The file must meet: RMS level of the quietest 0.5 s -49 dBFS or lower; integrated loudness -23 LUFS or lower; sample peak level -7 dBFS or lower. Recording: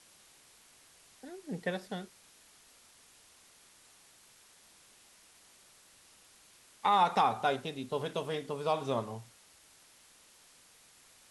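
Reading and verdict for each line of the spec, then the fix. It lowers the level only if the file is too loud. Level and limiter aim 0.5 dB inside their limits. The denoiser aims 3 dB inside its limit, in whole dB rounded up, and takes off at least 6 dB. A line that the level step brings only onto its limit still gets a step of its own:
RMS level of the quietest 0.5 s -61 dBFS: OK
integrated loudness -33.0 LUFS: OK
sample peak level -15.0 dBFS: OK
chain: none

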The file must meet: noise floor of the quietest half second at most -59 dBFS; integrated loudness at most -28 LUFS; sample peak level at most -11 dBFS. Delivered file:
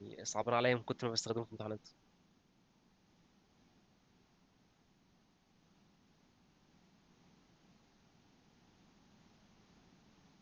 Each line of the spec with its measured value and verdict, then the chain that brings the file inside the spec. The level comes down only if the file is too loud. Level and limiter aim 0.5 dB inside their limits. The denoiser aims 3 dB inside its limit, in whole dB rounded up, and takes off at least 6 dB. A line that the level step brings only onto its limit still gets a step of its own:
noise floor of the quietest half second -72 dBFS: OK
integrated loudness -37.5 LUFS: OK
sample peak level -18.0 dBFS: OK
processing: none

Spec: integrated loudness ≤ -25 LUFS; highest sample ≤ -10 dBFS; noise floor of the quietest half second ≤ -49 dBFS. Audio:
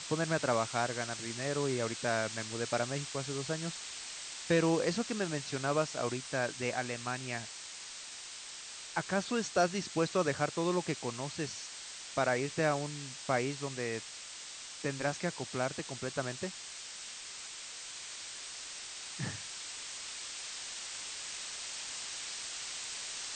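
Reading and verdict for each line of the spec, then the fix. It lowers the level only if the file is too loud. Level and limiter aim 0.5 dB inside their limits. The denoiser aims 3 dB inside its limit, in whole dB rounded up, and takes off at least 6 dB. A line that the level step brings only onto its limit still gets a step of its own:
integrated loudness -35.5 LUFS: OK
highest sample -16.5 dBFS: OK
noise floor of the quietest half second -47 dBFS: fail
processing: denoiser 6 dB, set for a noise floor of -47 dBFS

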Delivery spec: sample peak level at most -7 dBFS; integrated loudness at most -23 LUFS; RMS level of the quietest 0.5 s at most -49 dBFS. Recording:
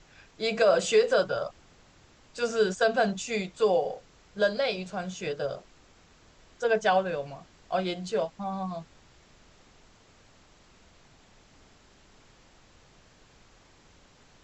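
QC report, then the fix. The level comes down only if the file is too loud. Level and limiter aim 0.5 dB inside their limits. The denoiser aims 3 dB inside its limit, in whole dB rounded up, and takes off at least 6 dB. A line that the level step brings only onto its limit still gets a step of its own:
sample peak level -11.5 dBFS: OK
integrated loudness -28.0 LUFS: OK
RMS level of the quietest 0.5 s -58 dBFS: OK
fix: none

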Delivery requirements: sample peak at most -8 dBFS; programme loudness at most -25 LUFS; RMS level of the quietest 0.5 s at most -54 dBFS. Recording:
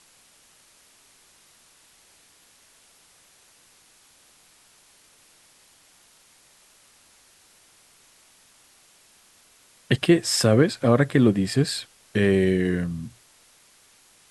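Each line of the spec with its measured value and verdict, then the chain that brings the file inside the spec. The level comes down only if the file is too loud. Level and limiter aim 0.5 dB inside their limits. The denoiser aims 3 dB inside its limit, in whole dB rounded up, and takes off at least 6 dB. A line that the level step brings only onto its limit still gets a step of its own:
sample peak -5.0 dBFS: fail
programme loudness -21.5 LUFS: fail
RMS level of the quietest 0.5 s -57 dBFS: OK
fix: gain -4 dB

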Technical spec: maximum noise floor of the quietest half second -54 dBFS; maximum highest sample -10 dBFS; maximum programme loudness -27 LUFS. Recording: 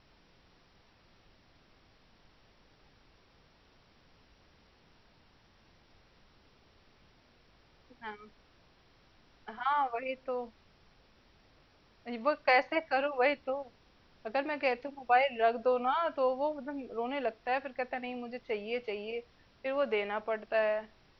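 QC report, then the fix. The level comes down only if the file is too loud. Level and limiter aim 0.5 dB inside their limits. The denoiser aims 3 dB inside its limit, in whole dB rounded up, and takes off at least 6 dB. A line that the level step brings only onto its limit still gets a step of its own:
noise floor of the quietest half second -64 dBFS: OK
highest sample -13.5 dBFS: OK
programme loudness -32.5 LUFS: OK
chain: none

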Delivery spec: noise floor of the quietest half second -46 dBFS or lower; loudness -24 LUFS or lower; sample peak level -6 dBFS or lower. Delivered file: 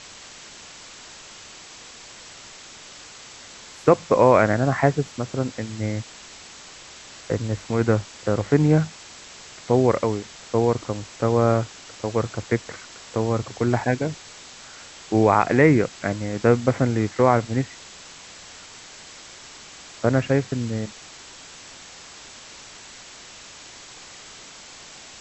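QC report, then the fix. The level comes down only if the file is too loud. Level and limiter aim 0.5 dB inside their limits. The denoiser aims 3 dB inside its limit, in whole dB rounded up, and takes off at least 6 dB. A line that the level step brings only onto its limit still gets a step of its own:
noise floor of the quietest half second -43 dBFS: fail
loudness -22.0 LUFS: fail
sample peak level -3.0 dBFS: fail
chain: denoiser 6 dB, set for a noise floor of -43 dBFS; gain -2.5 dB; limiter -6.5 dBFS

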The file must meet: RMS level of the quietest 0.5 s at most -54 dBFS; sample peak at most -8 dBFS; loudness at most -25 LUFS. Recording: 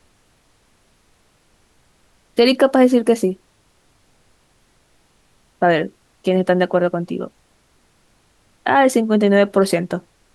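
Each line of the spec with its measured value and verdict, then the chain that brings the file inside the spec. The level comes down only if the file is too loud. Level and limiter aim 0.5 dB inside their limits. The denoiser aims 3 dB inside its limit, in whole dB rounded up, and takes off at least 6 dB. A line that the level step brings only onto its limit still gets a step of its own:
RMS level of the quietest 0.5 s -58 dBFS: OK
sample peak -3.5 dBFS: fail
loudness -17.5 LUFS: fail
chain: gain -8 dB

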